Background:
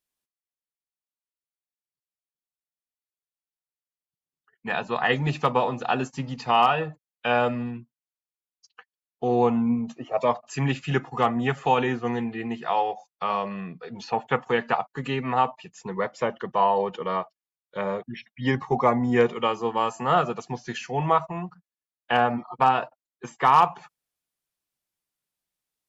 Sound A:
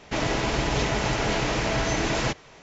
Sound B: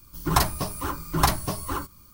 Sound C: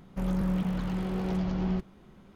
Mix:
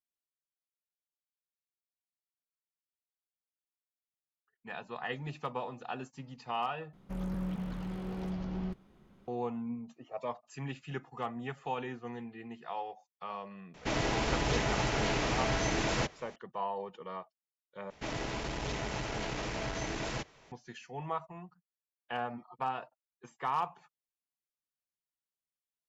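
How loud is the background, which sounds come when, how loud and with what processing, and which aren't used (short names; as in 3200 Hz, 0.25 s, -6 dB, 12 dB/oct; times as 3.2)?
background -15 dB
6.93 replace with C -7.5 dB
13.74 add A -6 dB
17.9 replace with A -10.5 dB + core saturation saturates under 200 Hz
not used: B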